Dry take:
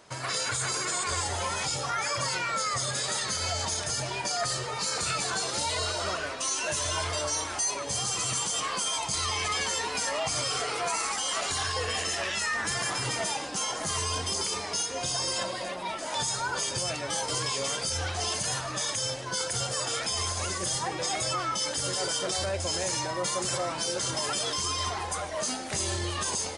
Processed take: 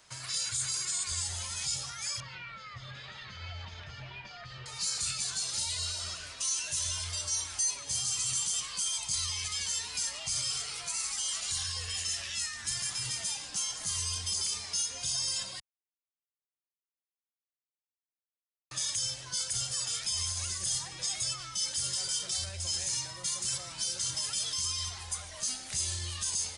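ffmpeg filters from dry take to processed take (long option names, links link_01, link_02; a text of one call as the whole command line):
ffmpeg -i in.wav -filter_complex "[0:a]asettb=1/sr,asplit=3[link_01][link_02][link_03];[link_01]atrim=end=2.204[link_04];[link_02]atrim=start=2.2:end=4.66,asetpts=PTS-STARTPTS,afade=type=in:duration=0.004:curve=qsin,afade=type=out:start_time=2.456:duration=0.004:curve=qsin,lowpass=frequency=2900:width=0.5412,lowpass=frequency=2900:width=1.3066[link_05];[link_03]atrim=start=4.656[link_06];[link_04][link_05]acrossfade=duration=0.004:curve1=hsin:curve2=qsin[link_07];[link_07][link_06]acrossfade=duration=0.004:curve1=qsin:curve2=hsin,asplit=3[link_08][link_09][link_10];[link_08]atrim=end=15.6,asetpts=PTS-STARTPTS,afade=type=out:start_time=15.596:duration=0.004:curve=hsin[link_11];[link_09]atrim=start=15.6:end=18.71,asetpts=PTS-STARTPTS,volume=0[link_12];[link_10]atrim=start=18.71,asetpts=PTS-STARTPTS,afade=type=in:duration=0.004:curve=hsin[link_13];[link_11][link_12][link_13]concat=n=3:v=0:a=1,equalizer=frequency=390:width=0.35:gain=-14.5,acrossover=split=210|3000[link_14][link_15][link_16];[link_15]acompressor=threshold=-50dB:ratio=3[link_17];[link_14][link_17][link_16]amix=inputs=3:normalize=0" out.wav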